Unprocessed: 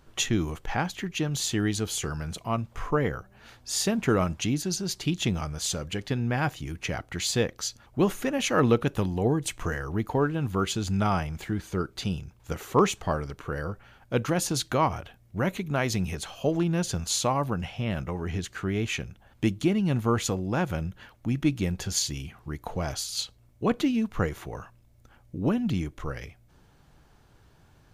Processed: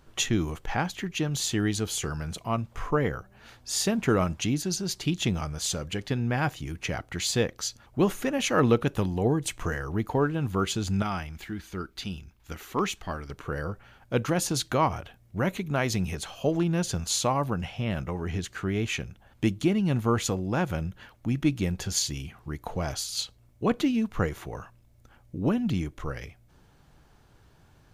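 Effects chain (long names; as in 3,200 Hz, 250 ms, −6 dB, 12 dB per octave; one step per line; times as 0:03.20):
0:11.02–0:13.30: octave-band graphic EQ 125/500/1,000/8,000 Hz −11/−9/−4/−5 dB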